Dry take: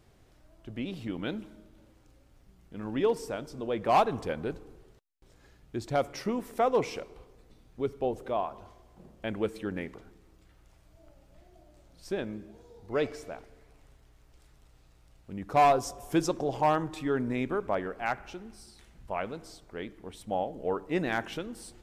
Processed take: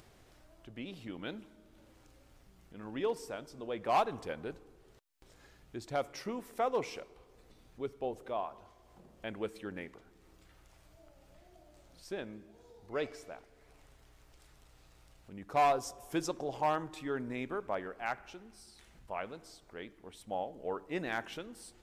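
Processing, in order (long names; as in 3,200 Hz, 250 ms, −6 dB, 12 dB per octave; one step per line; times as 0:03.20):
low-shelf EQ 390 Hz −6 dB
upward compression, threshold −47 dBFS
level −4.5 dB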